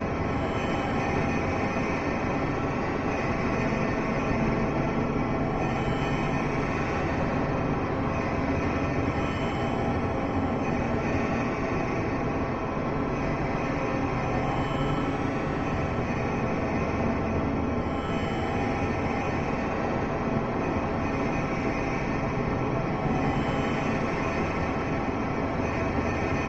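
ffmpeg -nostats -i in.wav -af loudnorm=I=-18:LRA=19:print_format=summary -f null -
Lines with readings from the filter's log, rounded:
Input Integrated:    -27.8 LUFS
Input True Peak:     -12.5 dBTP
Input LRA:             0.8 LU
Input Threshold:     -37.8 LUFS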